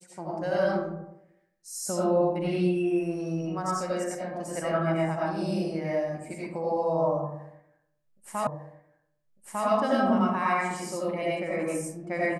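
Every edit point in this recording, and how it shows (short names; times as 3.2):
8.47 repeat of the last 1.2 s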